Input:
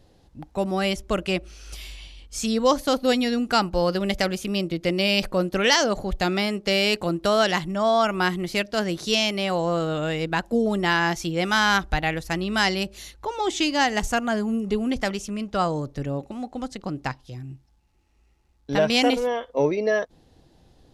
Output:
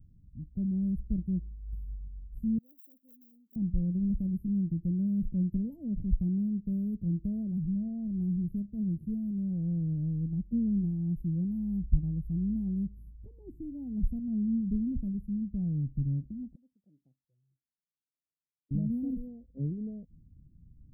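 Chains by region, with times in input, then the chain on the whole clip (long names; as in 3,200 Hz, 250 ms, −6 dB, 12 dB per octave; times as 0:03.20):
0:02.58–0:03.56: lower of the sound and its delayed copy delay 0.39 ms + high-pass filter 1,500 Hz
0:16.55–0:18.71: flanger swept by the level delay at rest 7.4 ms, full sweep at −25.5 dBFS + four-pole ladder band-pass 680 Hz, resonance 45%
whole clip: inverse Chebyshev band-stop filter 1,100–6,400 Hz, stop band 80 dB; comb filter 1.3 ms, depth 35%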